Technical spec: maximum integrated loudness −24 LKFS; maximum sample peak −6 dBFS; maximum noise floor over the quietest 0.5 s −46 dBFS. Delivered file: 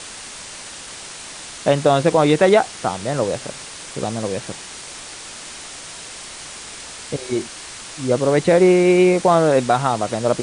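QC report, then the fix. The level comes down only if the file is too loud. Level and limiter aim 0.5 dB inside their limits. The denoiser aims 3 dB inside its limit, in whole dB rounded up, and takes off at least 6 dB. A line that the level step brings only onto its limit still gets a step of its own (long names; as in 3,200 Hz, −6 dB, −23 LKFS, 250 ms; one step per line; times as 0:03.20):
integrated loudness −17.5 LKFS: out of spec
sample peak −3.5 dBFS: out of spec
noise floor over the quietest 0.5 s −35 dBFS: out of spec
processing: broadband denoise 7 dB, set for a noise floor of −35 dBFS
level −7 dB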